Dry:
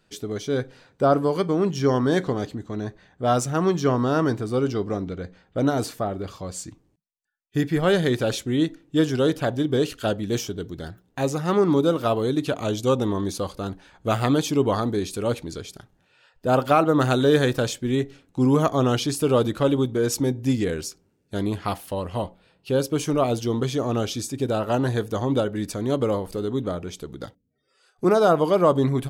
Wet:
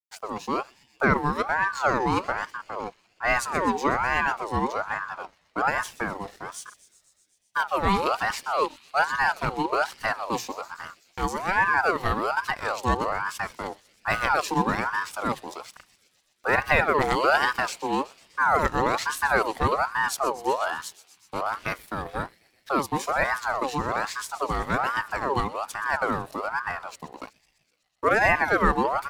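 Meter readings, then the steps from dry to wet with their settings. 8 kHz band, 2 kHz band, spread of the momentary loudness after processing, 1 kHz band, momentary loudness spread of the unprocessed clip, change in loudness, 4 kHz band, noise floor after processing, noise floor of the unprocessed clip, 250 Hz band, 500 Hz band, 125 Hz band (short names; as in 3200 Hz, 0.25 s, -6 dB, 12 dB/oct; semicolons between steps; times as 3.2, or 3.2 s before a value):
-4.0 dB, +10.0 dB, 14 LU, +4.0 dB, 13 LU, -2.5 dB, -3.5 dB, -67 dBFS, -66 dBFS, -10.0 dB, -7.0 dB, -10.5 dB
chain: crossover distortion -47.5 dBFS; thin delay 0.125 s, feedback 73%, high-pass 1900 Hz, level -15 dB; ring modulator with a swept carrier 980 Hz, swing 40%, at 1.2 Hz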